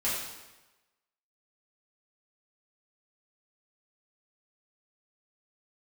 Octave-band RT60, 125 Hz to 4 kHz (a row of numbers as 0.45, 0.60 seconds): 1.0, 1.0, 1.1, 1.1, 1.0, 0.95 seconds